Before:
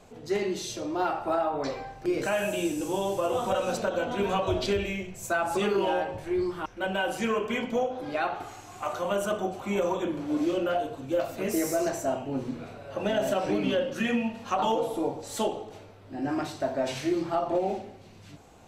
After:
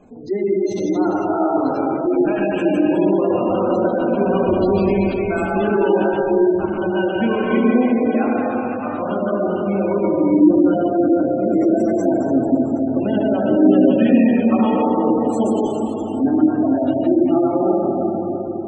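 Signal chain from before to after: 15.15–15.69 high shelf 4900 Hz -> 8800 Hz +5.5 dB; plate-style reverb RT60 4.7 s, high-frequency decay 0.9×, pre-delay 80 ms, DRR -5 dB; spectral gate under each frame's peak -20 dB strong; bell 260 Hz +13.5 dB 1 oct

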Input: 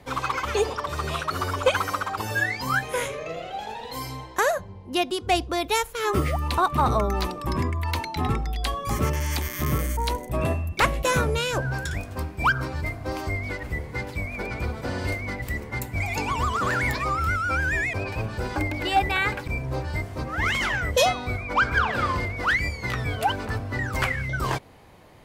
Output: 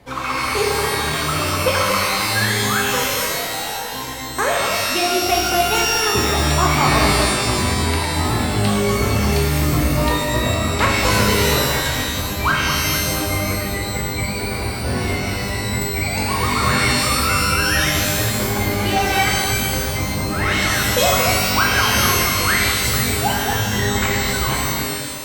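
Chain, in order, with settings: echo with dull and thin repeats by turns 0.229 s, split 1300 Hz, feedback 53%, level -5 dB; shimmer reverb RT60 1.3 s, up +12 st, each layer -2 dB, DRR -1.5 dB

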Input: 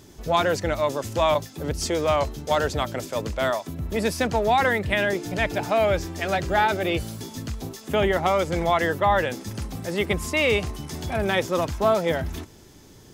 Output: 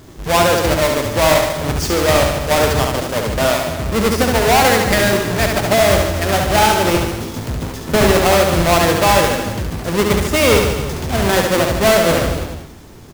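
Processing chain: half-waves squared off; reverse bouncing-ball echo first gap 70 ms, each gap 1.1×, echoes 5; gain +2.5 dB

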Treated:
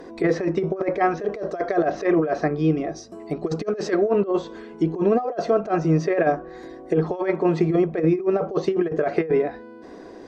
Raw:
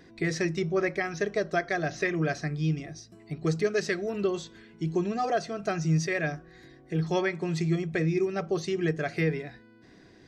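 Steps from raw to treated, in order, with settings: graphic EQ 125/250/500/1000/2000/4000 Hz -12/+4/+10/+9/-5/-4 dB; negative-ratio compressor -24 dBFS, ratio -0.5; treble ducked by the level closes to 2900 Hz, closed at -23.5 dBFS; gain +4.5 dB

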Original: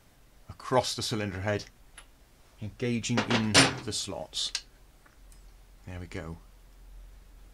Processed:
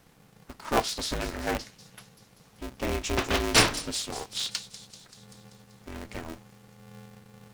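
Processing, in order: thin delay 0.193 s, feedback 64%, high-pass 4800 Hz, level -10.5 dB; polarity switched at an audio rate 160 Hz

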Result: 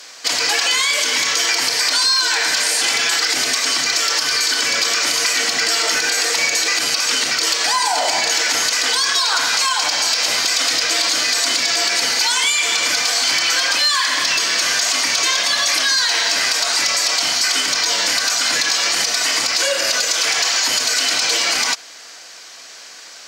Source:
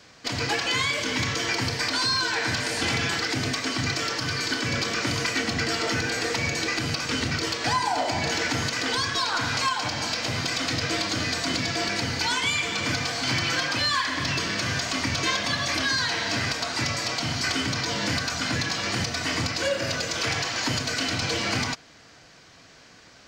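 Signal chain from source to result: HPF 530 Hz 12 dB/oct; bell 12000 Hz +14 dB 2 oct; limiter -17.5 dBFS, peak gain reduction 7 dB; gain +9 dB

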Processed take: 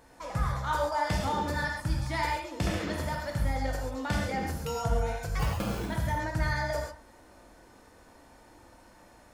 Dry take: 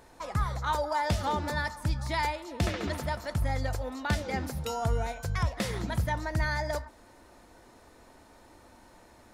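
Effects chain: notch 3900 Hz, Q 14; 5.39–5.86 sample-rate reducer 1900 Hz, jitter 0%; non-linear reverb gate 0.16 s flat, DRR -0.5 dB; gain -3 dB

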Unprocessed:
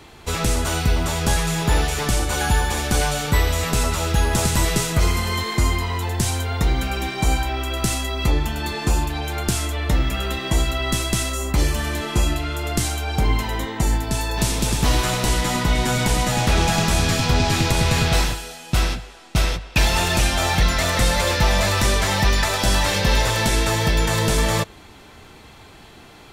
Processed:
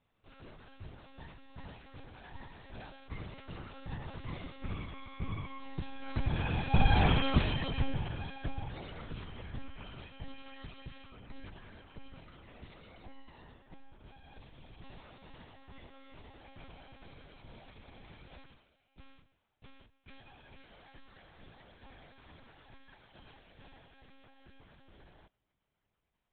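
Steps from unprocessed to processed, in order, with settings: Doppler pass-by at 7.05, 23 m/s, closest 5.5 m; monotone LPC vocoder at 8 kHz 270 Hz; dynamic EQ 110 Hz, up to +6 dB, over -49 dBFS, Q 0.82; gain -2.5 dB

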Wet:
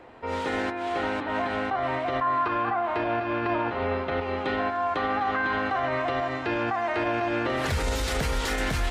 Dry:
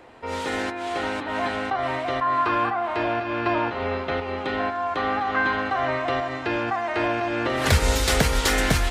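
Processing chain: limiter -17.5 dBFS, peak gain reduction 10 dB; high shelf 4600 Hz -11.5 dB, from 4.21 s -5 dB

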